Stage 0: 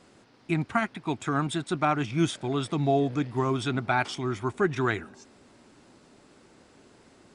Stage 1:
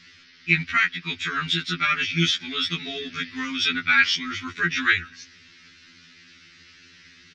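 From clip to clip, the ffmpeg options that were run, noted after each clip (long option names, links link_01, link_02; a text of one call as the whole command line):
ffmpeg -i in.wav -af "firequalizer=gain_entry='entry(120,0);entry(710,-25);entry(1300,2);entry(1900,14);entry(5800,11);entry(8300,-16)':delay=0.05:min_phase=1,afftfilt=real='re*2*eq(mod(b,4),0)':imag='im*2*eq(mod(b,4),0)':win_size=2048:overlap=0.75,volume=4dB" out.wav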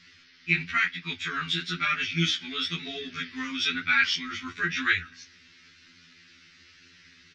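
ffmpeg -i in.wav -af "flanger=delay=9.9:depth=6.7:regen=-63:speed=1:shape=triangular" out.wav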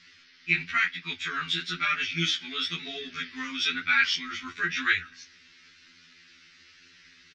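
ffmpeg -i in.wav -af "aresample=22050,aresample=44100,equalizer=frequency=89:width=0.35:gain=-6.5" out.wav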